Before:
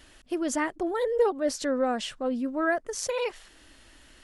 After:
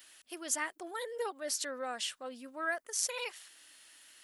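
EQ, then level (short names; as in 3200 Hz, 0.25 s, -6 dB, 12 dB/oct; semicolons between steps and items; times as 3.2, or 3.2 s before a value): differentiator; bell 7300 Hz -7.5 dB 2.3 oct; +9.0 dB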